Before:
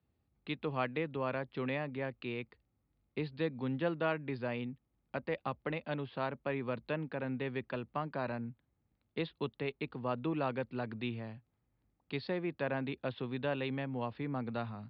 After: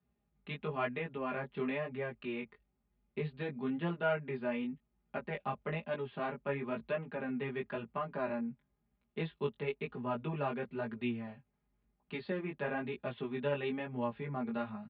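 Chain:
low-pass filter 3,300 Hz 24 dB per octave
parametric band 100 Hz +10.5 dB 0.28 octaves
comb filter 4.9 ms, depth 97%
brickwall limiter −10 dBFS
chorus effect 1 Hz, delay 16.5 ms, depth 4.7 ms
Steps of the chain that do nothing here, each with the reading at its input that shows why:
brickwall limiter −10 dBFS: peak of its input −17.5 dBFS

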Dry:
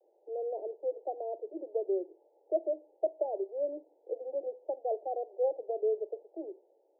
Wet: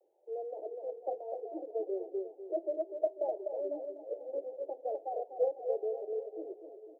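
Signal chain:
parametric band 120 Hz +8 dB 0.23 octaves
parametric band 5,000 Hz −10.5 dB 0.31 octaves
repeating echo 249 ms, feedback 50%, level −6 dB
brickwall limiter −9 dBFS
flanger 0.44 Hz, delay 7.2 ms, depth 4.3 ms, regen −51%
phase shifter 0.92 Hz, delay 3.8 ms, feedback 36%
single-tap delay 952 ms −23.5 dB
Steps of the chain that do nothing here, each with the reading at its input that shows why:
parametric band 120 Hz: nothing at its input below 270 Hz
parametric band 5,000 Hz: nothing at its input above 910 Hz
brickwall limiter −9 dBFS: peak of its input −17.0 dBFS

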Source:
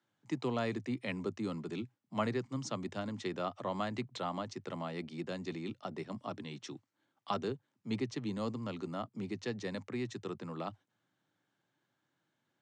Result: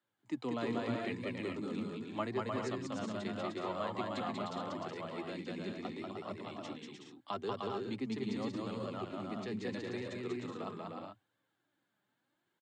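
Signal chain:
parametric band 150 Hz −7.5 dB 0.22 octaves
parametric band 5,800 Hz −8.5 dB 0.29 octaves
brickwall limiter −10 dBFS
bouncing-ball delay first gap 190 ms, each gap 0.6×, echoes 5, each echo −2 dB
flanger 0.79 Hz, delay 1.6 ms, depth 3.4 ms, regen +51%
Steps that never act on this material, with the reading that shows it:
brickwall limiter −10 dBFS: peak of its input −19.5 dBFS

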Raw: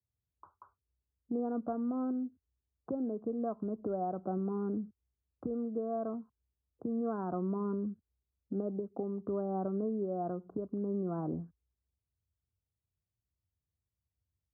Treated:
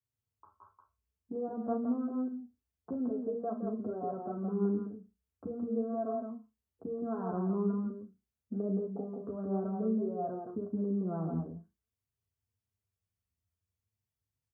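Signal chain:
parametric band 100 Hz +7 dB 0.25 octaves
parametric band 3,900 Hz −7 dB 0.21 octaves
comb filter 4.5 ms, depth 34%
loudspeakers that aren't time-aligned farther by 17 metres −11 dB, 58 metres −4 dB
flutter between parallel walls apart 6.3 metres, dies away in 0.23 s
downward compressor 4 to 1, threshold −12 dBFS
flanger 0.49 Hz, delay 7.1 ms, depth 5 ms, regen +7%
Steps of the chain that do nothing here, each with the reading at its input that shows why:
parametric band 3,900 Hz: nothing at its input above 1,300 Hz
downward compressor, threshold −12 dBFS: peak of its input −19.0 dBFS

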